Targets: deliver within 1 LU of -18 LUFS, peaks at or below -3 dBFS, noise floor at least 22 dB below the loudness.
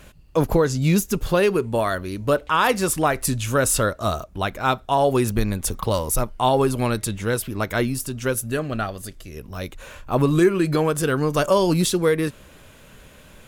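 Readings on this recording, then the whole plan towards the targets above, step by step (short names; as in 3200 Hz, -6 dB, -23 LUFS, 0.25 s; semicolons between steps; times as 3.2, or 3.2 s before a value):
loudness -21.5 LUFS; peak -5.5 dBFS; loudness target -18.0 LUFS
-> gain +3.5 dB; limiter -3 dBFS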